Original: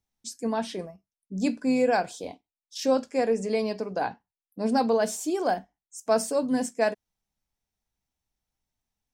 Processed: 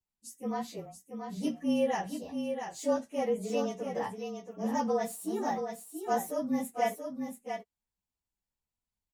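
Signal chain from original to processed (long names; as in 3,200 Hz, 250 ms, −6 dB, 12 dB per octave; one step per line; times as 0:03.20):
partials spread apart or drawn together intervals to 108%
single-tap delay 680 ms −6.5 dB
level −4.5 dB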